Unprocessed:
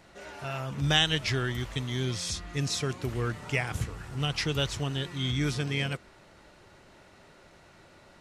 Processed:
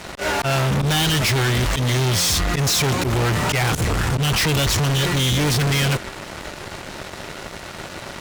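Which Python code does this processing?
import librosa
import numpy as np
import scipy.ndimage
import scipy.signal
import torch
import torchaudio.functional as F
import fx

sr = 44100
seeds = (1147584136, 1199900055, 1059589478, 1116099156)

y = fx.auto_swell(x, sr, attack_ms=125.0)
y = fx.fuzz(y, sr, gain_db=46.0, gate_db=-56.0)
y = F.gain(torch.from_numpy(y), -4.5).numpy()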